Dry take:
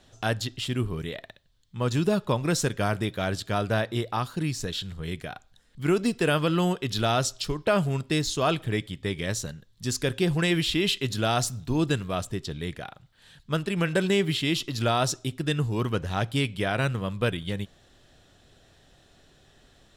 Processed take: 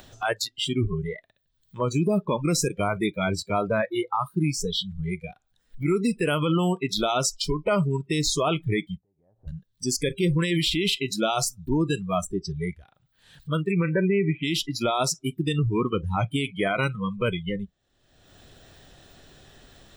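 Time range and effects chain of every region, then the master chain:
8.97–9.48 s: four-pole ladder low-pass 830 Hz, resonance 70% + compression 10:1, threshold -50 dBFS
13.71–14.43 s: steep low-pass 2.6 kHz 48 dB/octave + comb of notches 710 Hz
whole clip: spectral noise reduction 30 dB; upward compressor, threshold -33 dBFS; peak limiter -20.5 dBFS; trim +6 dB

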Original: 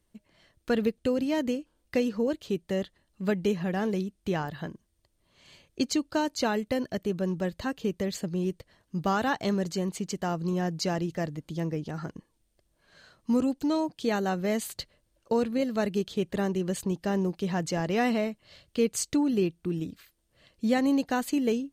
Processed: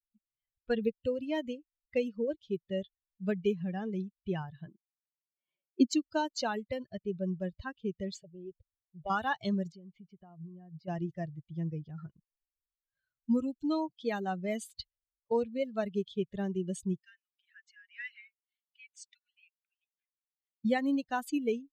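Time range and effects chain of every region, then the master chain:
4.68–5.93 s: high-pass 200 Hz 24 dB/octave + tilt shelf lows +6.5 dB, about 1.5 kHz
8.23–9.10 s: treble shelf 4 kHz -8 dB + static phaser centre 580 Hz, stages 4 + hard clipper -22.5 dBFS
9.72–10.88 s: compression 10:1, threshold -32 dBFS + distance through air 200 m
16.99–20.65 s: steep high-pass 1.4 kHz 72 dB/octave + treble shelf 2 kHz -6.5 dB
whole clip: expander on every frequency bin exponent 2; level-controlled noise filter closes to 2 kHz, open at -28.5 dBFS

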